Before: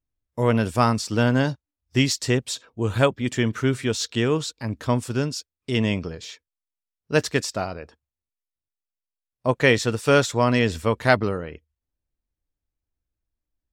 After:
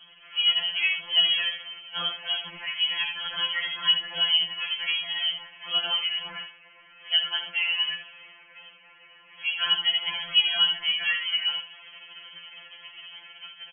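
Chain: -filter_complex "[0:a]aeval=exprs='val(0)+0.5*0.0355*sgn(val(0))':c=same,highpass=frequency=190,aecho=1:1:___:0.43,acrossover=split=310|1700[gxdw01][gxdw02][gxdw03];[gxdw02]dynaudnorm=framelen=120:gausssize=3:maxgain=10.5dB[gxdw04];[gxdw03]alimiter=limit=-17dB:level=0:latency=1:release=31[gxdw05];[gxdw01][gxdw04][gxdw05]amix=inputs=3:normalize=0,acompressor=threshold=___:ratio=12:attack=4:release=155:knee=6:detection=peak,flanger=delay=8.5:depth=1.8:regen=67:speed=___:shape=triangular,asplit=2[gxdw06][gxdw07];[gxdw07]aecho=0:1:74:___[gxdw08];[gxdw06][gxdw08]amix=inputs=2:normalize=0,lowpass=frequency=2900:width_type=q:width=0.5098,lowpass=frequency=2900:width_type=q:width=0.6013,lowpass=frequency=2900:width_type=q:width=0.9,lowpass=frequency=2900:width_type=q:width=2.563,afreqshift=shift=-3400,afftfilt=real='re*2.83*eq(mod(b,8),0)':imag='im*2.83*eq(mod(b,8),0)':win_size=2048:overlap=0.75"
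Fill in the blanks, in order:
2.5, -13dB, 0.77, 0.376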